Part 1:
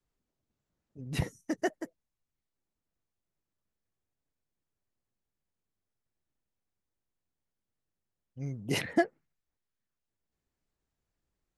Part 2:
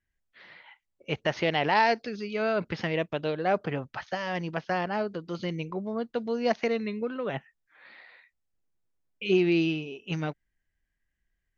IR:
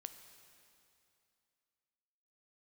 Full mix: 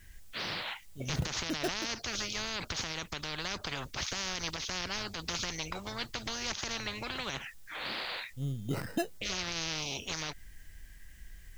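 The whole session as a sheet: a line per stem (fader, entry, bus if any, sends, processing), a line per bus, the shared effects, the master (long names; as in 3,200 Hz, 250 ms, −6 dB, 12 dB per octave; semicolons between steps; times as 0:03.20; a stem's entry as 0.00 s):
−3.0 dB, 0.00 s, no send, low-pass filter 2,000 Hz 12 dB per octave; decimation without filtering 13×
+1.5 dB, 0.00 s, no send, high-shelf EQ 2,600 Hz +11.5 dB; downward compressor 2 to 1, threshold −29 dBFS, peak gain reduction 7.5 dB; every bin compressed towards the loudest bin 10 to 1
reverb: not used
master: low-shelf EQ 140 Hz +11 dB; brickwall limiter −22 dBFS, peak gain reduction 10.5 dB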